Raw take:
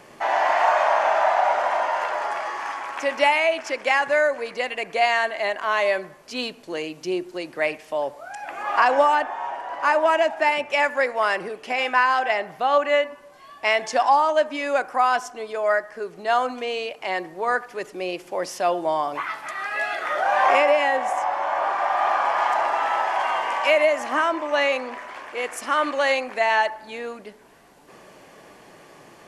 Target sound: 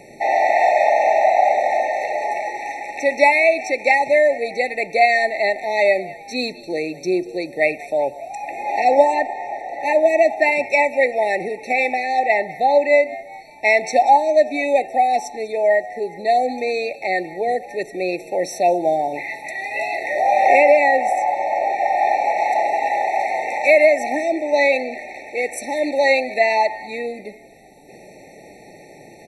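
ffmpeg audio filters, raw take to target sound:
-filter_complex "[0:a]asplit=5[s0][s1][s2][s3][s4];[s1]adelay=195,afreqshift=100,volume=0.106[s5];[s2]adelay=390,afreqshift=200,volume=0.0562[s6];[s3]adelay=585,afreqshift=300,volume=0.0299[s7];[s4]adelay=780,afreqshift=400,volume=0.0158[s8];[s0][s5][s6][s7][s8]amix=inputs=5:normalize=0,afftfilt=real='re*eq(mod(floor(b*sr/1024/900),2),0)':imag='im*eq(mod(floor(b*sr/1024/900),2),0)':win_size=1024:overlap=0.75,volume=2"

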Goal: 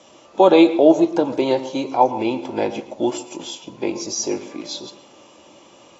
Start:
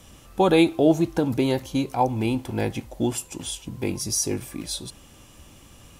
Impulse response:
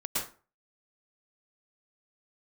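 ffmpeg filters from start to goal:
-filter_complex "[0:a]highpass=310,equalizer=f=340:t=q:w=4:g=6,equalizer=f=580:t=q:w=4:g=9,equalizer=f=920:t=q:w=4:g=6,equalizer=f=1700:t=q:w=4:g=-5,lowpass=f=7500:w=0.5412,lowpass=f=7500:w=1.3066,asplit=2[s0][s1];[1:a]atrim=start_sample=2205,lowpass=5300[s2];[s1][s2]afir=irnorm=-1:irlink=0,volume=0.119[s3];[s0][s3]amix=inputs=2:normalize=0,volume=1.19" -ar 22050 -c:a aac -b:a 24k

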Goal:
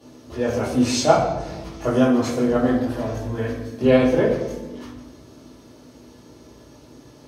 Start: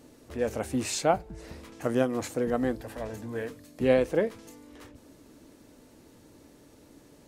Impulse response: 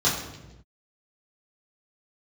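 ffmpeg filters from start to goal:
-filter_complex "[0:a]lowshelf=f=290:g=-5[s0];[1:a]atrim=start_sample=2205,asetrate=38808,aresample=44100[s1];[s0][s1]afir=irnorm=-1:irlink=0,volume=0.447"

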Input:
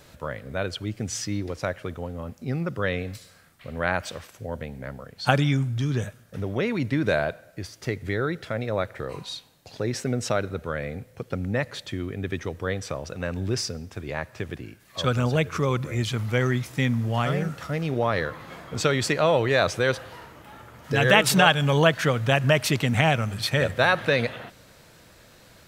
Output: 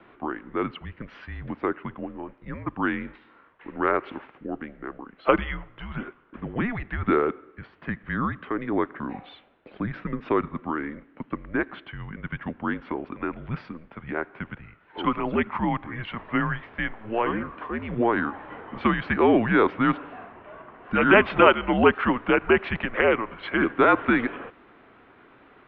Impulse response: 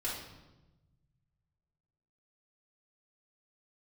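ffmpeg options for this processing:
-filter_complex "[0:a]acrossover=split=380 2500:gain=0.141 1 0.178[s0][s1][s2];[s0][s1][s2]amix=inputs=3:normalize=0,highpass=f=240:t=q:w=0.5412,highpass=f=240:t=q:w=1.307,lowpass=f=3400:t=q:w=0.5176,lowpass=f=3400:t=q:w=0.7071,lowpass=f=3400:t=q:w=1.932,afreqshift=-230,volume=1.58"

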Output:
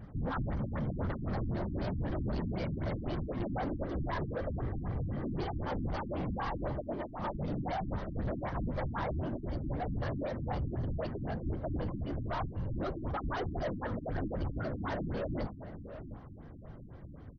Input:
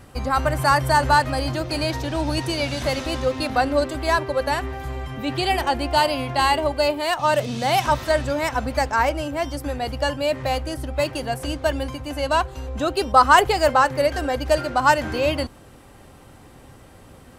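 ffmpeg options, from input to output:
-filter_complex "[0:a]volume=8.91,asoftclip=hard,volume=0.112,bass=f=250:g=9,treble=f=4000:g=-14,bandreject=f=870:w=12,afftfilt=real='hypot(re,im)*cos(2*PI*random(0))':imag='hypot(re,im)*sin(2*PI*random(1))':win_size=512:overlap=0.75,asoftclip=type=tanh:threshold=0.0398,equalizer=f=2600:t=o:w=0.35:g=-8.5,asplit=2[s0][s1];[s1]adelay=695,lowpass=f=2200:p=1,volume=0.266,asplit=2[s2][s3];[s3]adelay=695,lowpass=f=2200:p=1,volume=0.33,asplit=2[s4][s5];[s5]adelay=695,lowpass=f=2200:p=1,volume=0.33[s6];[s2][s4][s6]amix=inputs=3:normalize=0[s7];[s0][s7]amix=inputs=2:normalize=0,afftfilt=real='re*lt(b*sr/1024,310*pow(6600/310,0.5+0.5*sin(2*PI*3.9*pts/sr)))':imag='im*lt(b*sr/1024,310*pow(6600/310,0.5+0.5*sin(2*PI*3.9*pts/sr)))':win_size=1024:overlap=0.75,volume=0.75"

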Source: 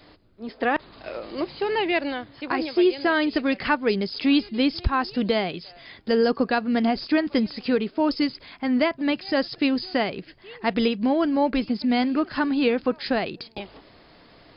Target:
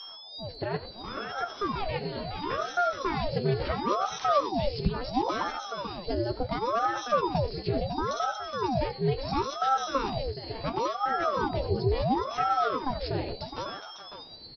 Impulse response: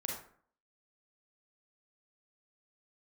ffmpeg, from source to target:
-filter_complex "[0:a]aeval=exprs='val(0)+0.0251*sin(2*PI*4300*n/s)':c=same,equalizer=f=1600:w=0.34:g=-14.5,acompressor=threshold=0.0282:ratio=1.5,aecho=1:1:92|419|551:0.188|0.282|0.422,flanger=delay=9.6:depth=5.3:regen=50:speed=0.15:shape=sinusoidal,asplit=2[s0][s1];[1:a]atrim=start_sample=2205[s2];[s1][s2]afir=irnorm=-1:irlink=0,volume=0.112[s3];[s0][s3]amix=inputs=2:normalize=0,aeval=exprs='val(0)*sin(2*PI*590*n/s+590*0.8/0.72*sin(2*PI*0.72*n/s))':c=same,volume=2.37"

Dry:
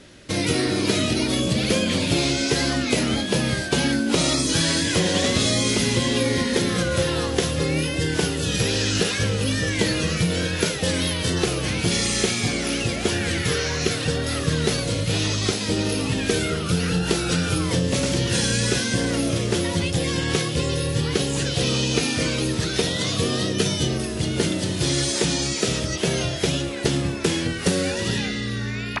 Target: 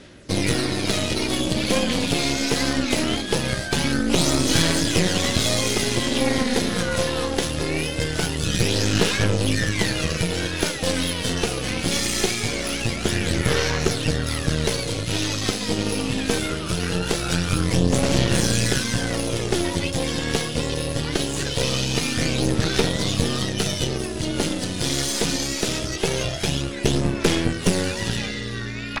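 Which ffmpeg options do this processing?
-af "aphaser=in_gain=1:out_gain=1:delay=4.2:decay=0.38:speed=0.22:type=sinusoidal,aeval=exprs='0.708*(cos(1*acos(clip(val(0)/0.708,-1,1)))-cos(1*PI/2))+0.112*(cos(6*acos(clip(val(0)/0.708,-1,1)))-cos(6*PI/2))':c=same,volume=0.794"

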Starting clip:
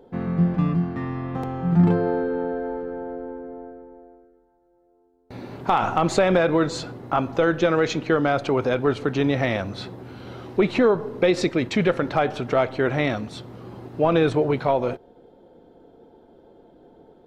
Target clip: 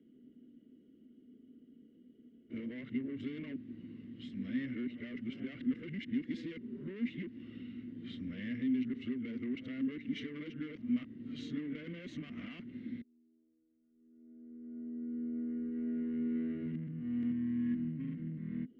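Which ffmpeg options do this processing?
-filter_complex "[0:a]areverse,asplit=2[s0][s1];[s1]alimiter=limit=0.141:level=0:latency=1:release=290,volume=0.891[s2];[s0][s2]amix=inputs=2:normalize=0,aeval=exprs='(tanh(7.94*val(0)+0.4)-tanh(0.4))/7.94':c=same,lowshelf=f=140:g=11.5,acompressor=threshold=0.158:ratio=6,asplit=3[s3][s4][s5];[s3]bandpass=f=270:t=q:w=8,volume=1[s6];[s4]bandpass=f=2290:t=q:w=8,volume=0.501[s7];[s5]bandpass=f=3010:t=q:w=8,volume=0.355[s8];[s6][s7][s8]amix=inputs=3:normalize=0,equalizer=f=1400:w=6.5:g=-4.5,asetrate=40517,aresample=44100,volume=0.596"

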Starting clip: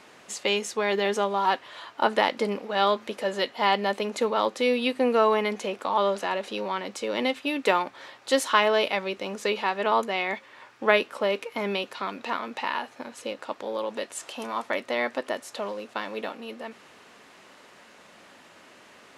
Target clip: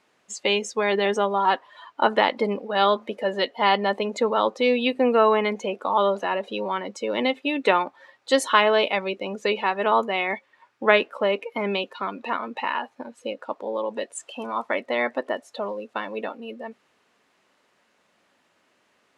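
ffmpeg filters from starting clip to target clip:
-af "afftdn=nr=17:nf=-36,volume=1.41"

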